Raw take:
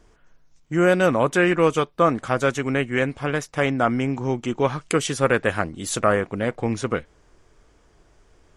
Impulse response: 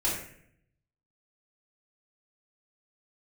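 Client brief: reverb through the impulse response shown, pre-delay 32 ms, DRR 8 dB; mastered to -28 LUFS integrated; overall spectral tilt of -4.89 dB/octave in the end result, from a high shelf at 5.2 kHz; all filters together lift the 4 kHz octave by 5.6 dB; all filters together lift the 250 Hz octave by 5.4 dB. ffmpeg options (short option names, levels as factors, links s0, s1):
-filter_complex "[0:a]equalizer=f=250:t=o:g=7,equalizer=f=4000:t=o:g=4,highshelf=f=5200:g=9,asplit=2[s0][s1];[1:a]atrim=start_sample=2205,adelay=32[s2];[s1][s2]afir=irnorm=-1:irlink=0,volume=0.15[s3];[s0][s3]amix=inputs=2:normalize=0,volume=0.335"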